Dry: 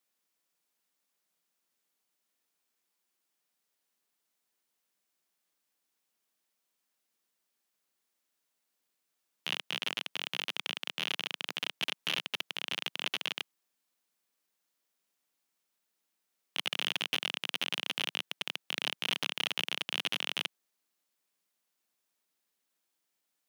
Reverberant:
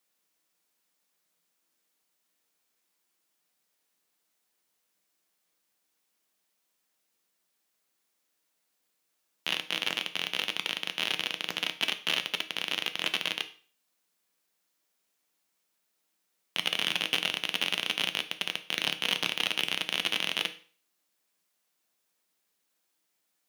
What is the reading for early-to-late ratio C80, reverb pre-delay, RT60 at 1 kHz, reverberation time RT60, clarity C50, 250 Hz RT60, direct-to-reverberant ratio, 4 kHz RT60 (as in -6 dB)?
19.5 dB, 6 ms, 0.45 s, 0.45 s, 15.0 dB, 0.40 s, 8.0 dB, 0.40 s